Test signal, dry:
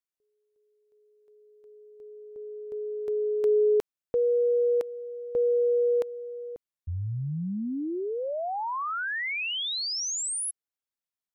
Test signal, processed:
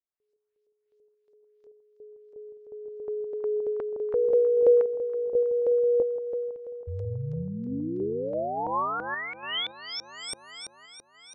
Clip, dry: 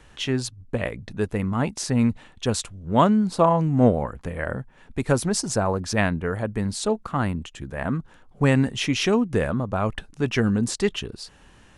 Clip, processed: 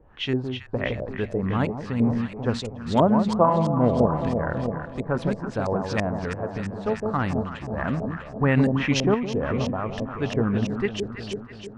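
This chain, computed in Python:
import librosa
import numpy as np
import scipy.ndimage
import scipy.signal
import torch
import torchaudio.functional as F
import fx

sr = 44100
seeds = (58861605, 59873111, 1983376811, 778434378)

y = fx.echo_alternate(x, sr, ms=162, hz=980.0, feedback_pct=80, wet_db=-5.5)
y = fx.tremolo_random(y, sr, seeds[0], hz=3.5, depth_pct=55)
y = fx.filter_lfo_lowpass(y, sr, shape='saw_up', hz=3.0, low_hz=480.0, high_hz=7000.0, q=1.6)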